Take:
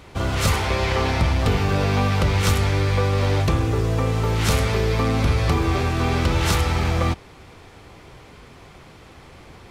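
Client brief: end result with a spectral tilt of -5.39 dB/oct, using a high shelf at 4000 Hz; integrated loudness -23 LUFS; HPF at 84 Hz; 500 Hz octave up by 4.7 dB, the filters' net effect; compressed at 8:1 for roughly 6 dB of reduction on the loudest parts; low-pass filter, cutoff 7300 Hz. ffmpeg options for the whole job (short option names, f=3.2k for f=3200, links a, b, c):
-af "highpass=84,lowpass=7.3k,equalizer=f=500:t=o:g=5.5,highshelf=f=4k:g=4,acompressor=threshold=-21dB:ratio=8,volume=2.5dB"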